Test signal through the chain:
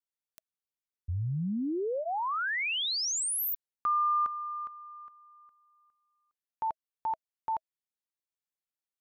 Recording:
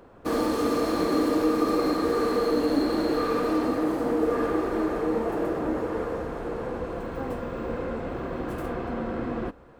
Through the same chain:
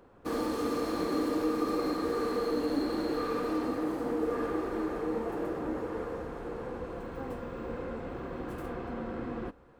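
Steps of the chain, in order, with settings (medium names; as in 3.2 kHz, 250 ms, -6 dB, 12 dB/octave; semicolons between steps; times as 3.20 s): band-stop 640 Hz, Q 12; trim -6.5 dB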